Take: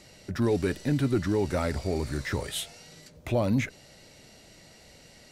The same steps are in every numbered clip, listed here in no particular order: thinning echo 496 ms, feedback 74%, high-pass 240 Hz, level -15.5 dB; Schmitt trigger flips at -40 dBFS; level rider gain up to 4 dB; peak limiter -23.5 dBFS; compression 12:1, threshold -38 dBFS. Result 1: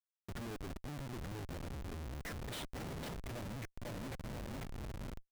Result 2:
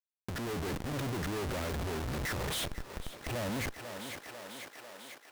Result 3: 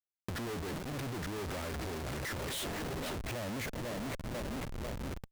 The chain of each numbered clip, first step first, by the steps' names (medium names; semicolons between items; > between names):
peak limiter > thinning echo > level rider > compression > Schmitt trigger; Schmitt trigger > thinning echo > compression > level rider > peak limiter; level rider > thinning echo > Schmitt trigger > peak limiter > compression